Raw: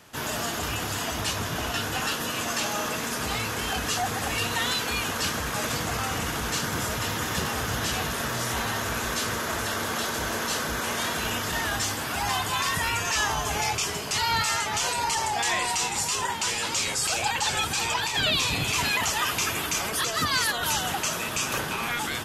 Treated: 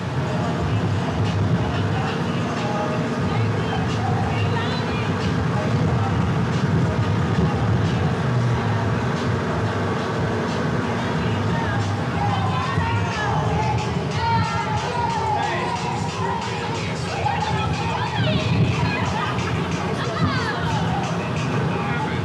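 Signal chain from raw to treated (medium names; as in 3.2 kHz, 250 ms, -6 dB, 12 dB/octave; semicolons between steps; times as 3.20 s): one-bit delta coder 64 kbps, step -26 dBFS; on a send at -2 dB: reverberation RT60 1.0 s, pre-delay 3 ms; on the sum: saturation -14 dBFS, distortion -17 dB; high-pass 120 Hz 12 dB/octave; tape spacing loss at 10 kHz 26 dB; trim +5 dB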